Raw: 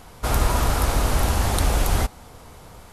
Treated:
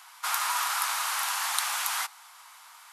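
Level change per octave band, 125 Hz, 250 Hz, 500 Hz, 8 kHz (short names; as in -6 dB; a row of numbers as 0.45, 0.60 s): under -40 dB, under -40 dB, -23.5 dB, 0.0 dB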